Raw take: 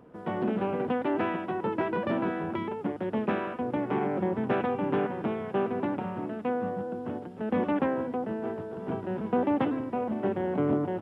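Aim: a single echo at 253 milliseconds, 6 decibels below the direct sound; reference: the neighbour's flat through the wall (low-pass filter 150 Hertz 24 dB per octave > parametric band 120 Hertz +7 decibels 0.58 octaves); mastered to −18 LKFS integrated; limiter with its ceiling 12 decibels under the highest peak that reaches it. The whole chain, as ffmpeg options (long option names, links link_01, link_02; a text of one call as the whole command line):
ffmpeg -i in.wav -af "alimiter=level_in=3.5dB:limit=-24dB:level=0:latency=1,volume=-3.5dB,lowpass=frequency=150:width=0.5412,lowpass=frequency=150:width=1.3066,equalizer=frequency=120:width_type=o:width=0.58:gain=7,aecho=1:1:253:0.501,volume=28.5dB" out.wav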